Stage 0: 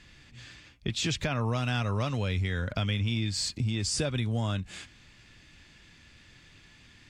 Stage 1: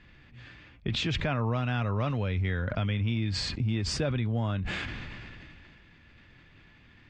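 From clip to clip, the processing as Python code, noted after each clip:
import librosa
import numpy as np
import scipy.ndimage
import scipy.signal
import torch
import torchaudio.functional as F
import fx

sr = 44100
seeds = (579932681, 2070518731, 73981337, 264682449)

y = scipy.signal.sosfilt(scipy.signal.butter(2, 2400.0, 'lowpass', fs=sr, output='sos'), x)
y = fx.sustainer(y, sr, db_per_s=21.0)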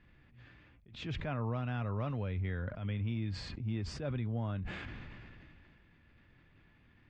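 y = fx.high_shelf(x, sr, hz=2800.0, db=-11.0)
y = fx.attack_slew(y, sr, db_per_s=110.0)
y = y * 10.0 ** (-6.5 / 20.0)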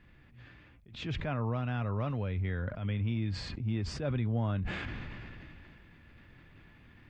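y = fx.rider(x, sr, range_db=4, speed_s=2.0)
y = y * 10.0 ** (3.5 / 20.0)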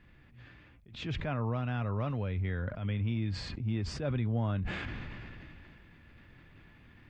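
y = x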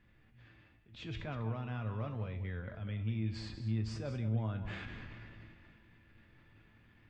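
y = fx.comb_fb(x, sr, f0_hz=110.0, decay_s=0.5, harmonics='all', damping=0.0, mix_pct=70)
y = y + 10.0 ** (-11.0 / 20.0) * np.pad(y, (int(194 * sr / 1000.0), 0))[:len(y)]
y = y * 10.0 ** (1.0 / 20.0)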